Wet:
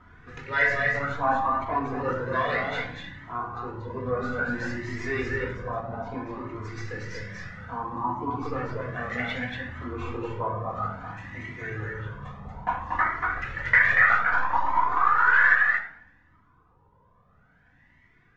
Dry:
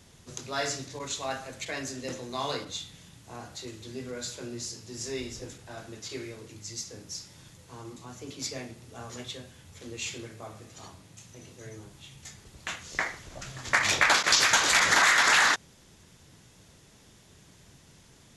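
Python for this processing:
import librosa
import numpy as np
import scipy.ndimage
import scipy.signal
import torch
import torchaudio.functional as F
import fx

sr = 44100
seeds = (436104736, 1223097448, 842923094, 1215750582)

y = fx.tracing_dist(x, sr, depth_ms=0.043)
y = fx.rider(y, sr, range_db=10, speed_s=0.5)
y = np.clip(y, -10.0 ** (-21.0 / 20.0), 10.0 ** (-21.0 / 20.0))
y = fx.filter_lfo_lowpass(y, sr, shape='sine', hz=0.46, low_hz=940.0, high_hz=2000.0, q=7.6)
y = y + 10.0 ** (-4.0 / 20.0) * np.pad(y, (int(235 * sr / 1000.0), 0))[:len(y)]
y = fx.room_shoebox(y, sr, seeds[0], volume_m3=2400.0, walls='furnished', distance_m=1.9)
y = fx.comb_cascade(y, sr, direction='rising', hz=0.61)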